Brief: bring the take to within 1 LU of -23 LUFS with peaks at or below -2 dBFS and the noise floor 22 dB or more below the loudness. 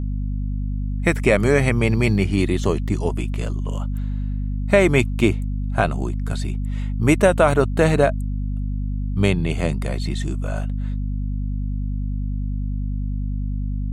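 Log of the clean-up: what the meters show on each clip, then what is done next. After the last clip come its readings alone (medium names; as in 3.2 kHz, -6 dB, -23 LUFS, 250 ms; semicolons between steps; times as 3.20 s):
hum 50 Hz; highest harmonic 250 Hz; hum level -21 dBFS; loudness -22.0 LUFS; peak level -2.0 dBFS; loudness target -23.0 LUFS
-> de-hum 50 Hz, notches 5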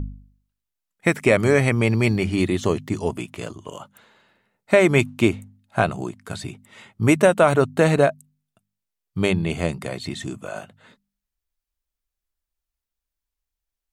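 hum not found; loudness -20.5 LUFS; peak level -3.0 dBFS; loudness target -23.0 LUFS
-> trim -2.5 dB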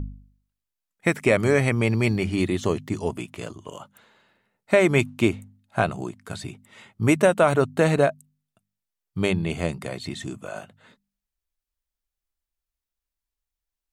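loudness -23.0 LUFS; peak level -5.5 dBFS; noise floor -87 dBFS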